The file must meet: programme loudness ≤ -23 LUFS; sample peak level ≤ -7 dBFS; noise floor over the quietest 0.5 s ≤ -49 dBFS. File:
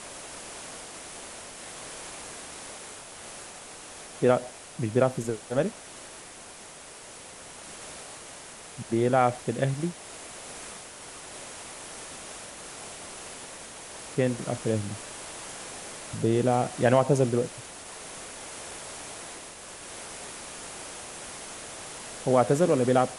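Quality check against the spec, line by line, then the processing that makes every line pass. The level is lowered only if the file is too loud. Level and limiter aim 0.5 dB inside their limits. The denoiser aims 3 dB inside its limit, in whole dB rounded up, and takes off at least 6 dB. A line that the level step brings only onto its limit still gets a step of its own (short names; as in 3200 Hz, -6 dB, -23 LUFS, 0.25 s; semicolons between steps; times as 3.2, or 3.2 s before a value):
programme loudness -30.5 LUFS: OK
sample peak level -7.5 dBFS: OK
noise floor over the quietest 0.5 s -46 dBFS: fail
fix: denoiser 6 dB, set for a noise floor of -46 dBFS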